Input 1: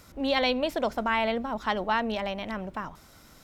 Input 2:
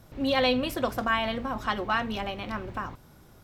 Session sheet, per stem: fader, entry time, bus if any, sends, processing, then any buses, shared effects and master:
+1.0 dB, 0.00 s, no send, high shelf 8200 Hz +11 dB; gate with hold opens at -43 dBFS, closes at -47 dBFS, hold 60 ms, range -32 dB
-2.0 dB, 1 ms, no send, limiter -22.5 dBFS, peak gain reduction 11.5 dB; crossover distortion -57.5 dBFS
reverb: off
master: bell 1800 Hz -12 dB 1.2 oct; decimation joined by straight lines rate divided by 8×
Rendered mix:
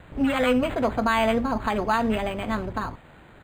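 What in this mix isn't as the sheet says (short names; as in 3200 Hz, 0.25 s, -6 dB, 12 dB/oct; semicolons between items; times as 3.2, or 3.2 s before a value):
stem 2 -2.0 dB -> +5.5 dB; master: missing bell 1800 Hz -12 dB 1.2 oct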